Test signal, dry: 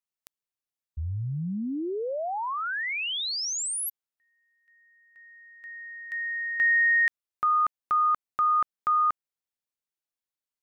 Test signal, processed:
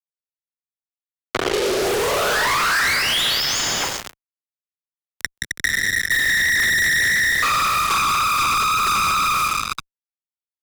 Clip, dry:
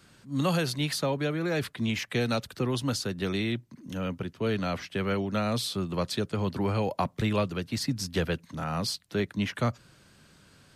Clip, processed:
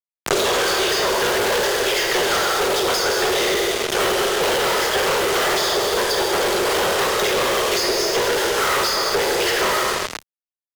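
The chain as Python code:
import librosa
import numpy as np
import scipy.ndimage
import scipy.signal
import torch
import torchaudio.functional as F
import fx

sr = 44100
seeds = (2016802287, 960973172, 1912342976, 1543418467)

y = fx.lower_of_two(x, sr, delay_ms=0.62)
y = fx.peak_eq(y, sr, hz=2400.0, db=-3.5, octaves=2.3)
y = fx.rider(y, sr, range_db=4, speed_s=2.0)
y = fx.tremolo_random(y, sr, seeds[0], hz=3.5, depth_pct=55)
y = fx.whisperise(y, sr, seeds[1])
y = fx.brickwall_bandpass(y, sr, low_hz=350.0, high_hz=7300.0)
y = fx.echo_feedback(y, sr, ms=134, feedback_pct=60, wet_db=-16)
y = fx.rev_plate(y, sr, seeds[2], rt60_s=1.5, hf_ratio=0.95, predelay_ms=0, drr_db=0.0)
y = fx.fuzz(y, sr, gain_db=52.0, gate_db=-47.0)
y = fx.band_squash(y, sr, depth_pct=100)
y = y * 10.0 ** (-4.5 / 20.0)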